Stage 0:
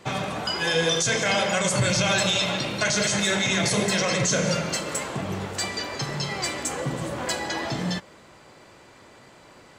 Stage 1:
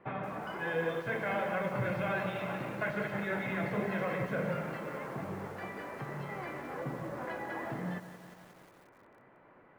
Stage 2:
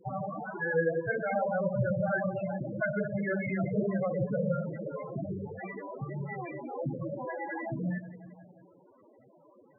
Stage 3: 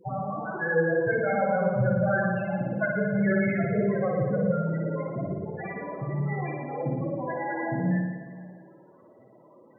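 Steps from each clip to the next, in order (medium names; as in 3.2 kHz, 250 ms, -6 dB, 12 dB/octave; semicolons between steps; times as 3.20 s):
low-pass 2 kHz 24 dB/octave; peaking EQ 64 Hz -9.5 dB 1.3 oct; bit-crushed delay 178 ms, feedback 80%, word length 7-bit, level -13 dB; trim -8.5 dB
loudest bins only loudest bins 8; trim +6 dB
reverberation RT60 1.4 s, pre-delay 55 ms, DRR 1 dB; trim +3 dB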